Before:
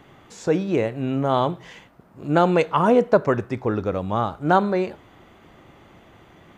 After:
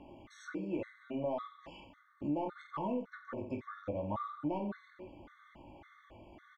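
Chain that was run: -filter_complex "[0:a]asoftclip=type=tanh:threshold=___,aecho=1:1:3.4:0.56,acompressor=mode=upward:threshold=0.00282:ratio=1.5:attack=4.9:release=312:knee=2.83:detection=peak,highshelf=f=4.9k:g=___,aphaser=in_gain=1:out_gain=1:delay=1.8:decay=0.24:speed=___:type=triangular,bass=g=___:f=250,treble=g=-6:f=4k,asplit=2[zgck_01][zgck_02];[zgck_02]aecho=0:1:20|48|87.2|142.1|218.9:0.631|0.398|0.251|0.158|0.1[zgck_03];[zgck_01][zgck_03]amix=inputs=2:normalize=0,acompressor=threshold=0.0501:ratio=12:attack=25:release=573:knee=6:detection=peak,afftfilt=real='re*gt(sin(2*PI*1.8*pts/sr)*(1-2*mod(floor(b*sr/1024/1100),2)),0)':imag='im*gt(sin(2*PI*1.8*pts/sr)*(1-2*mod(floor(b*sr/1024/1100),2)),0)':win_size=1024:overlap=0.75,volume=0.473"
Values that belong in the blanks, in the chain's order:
0.355, -10, 0.41, -1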